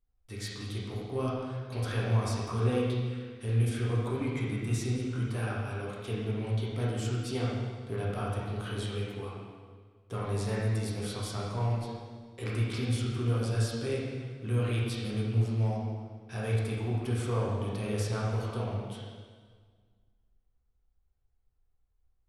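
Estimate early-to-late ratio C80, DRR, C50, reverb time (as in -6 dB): 1.5 dB, -6.5 dB, -1.0 dB, 1.7 s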